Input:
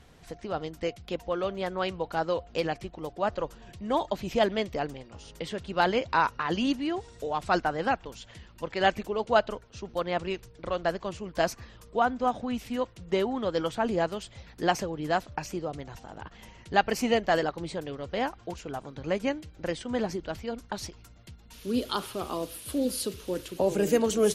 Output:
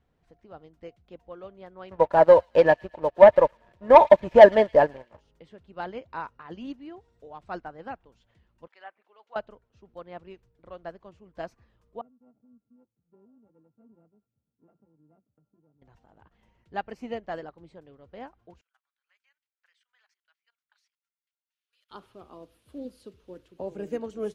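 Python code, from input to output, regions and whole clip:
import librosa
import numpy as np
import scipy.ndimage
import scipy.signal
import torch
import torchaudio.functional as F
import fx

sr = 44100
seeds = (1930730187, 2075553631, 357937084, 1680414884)

y = fx.chain(x, sr, fx.small_body(hz=(600.0, 910.0, 1700.0), ring_ms=30, db=17),
    fx.leveller(passes=2),
    fx.echo_wet_highpass(ms=111, feedback_pct=38, hz=2900.0, wet_db=-7.5), at=(1.91, 5.21))
y = fx.chain(y, sr, fx.highpass(hz=1100.0, slope=12),
    fx.env_lowpass_down(base_hz=1500.0, full_db=-28.5), at=(8.67, 9.36))
y = fx.chain(y, sr, fx.sample_sort(block=32),
    fx.ladder_bandpass(hz=220.0, resonance_pct=30),
    fx.notch_comb(f0_hz=180.0), at=(12.01, 15.82))
y = fx.chain(y, sr, fx.highpass(hz=1500.0, slope=24),
    fx.level_steps(step_db=16),
    fx.upward_expand(threshold_db=-58.0, expansion=1.5), at=(18.61, 21.91))
y = fx.lowpass(y, sr, hz=1500.0, slope=6)
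y = fx.upward_expand(y, sr, threshold_db=-36.0, expansion=1.5)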